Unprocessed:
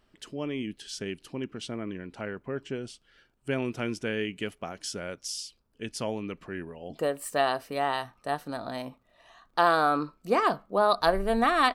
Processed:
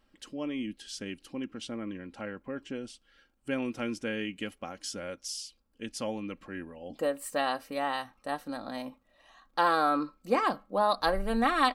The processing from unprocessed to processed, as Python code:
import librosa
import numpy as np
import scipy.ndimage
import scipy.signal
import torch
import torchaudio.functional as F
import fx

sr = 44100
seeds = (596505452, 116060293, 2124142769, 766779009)

y = x + 0.56 * np.pad(x, (int(3.7 * sr / 1000.0), 0))[:len(x)]
y = F.gain(torch.from_numpy(y), -3.5).numpy()